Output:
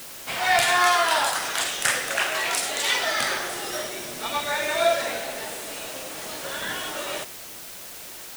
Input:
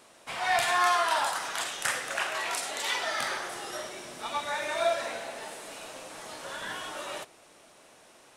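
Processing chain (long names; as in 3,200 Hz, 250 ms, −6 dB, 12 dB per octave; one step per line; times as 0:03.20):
parametric band 1,000 Hz −5 dB 1 octave
bit-depth reduction 8 bits, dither triangular
level +8 dB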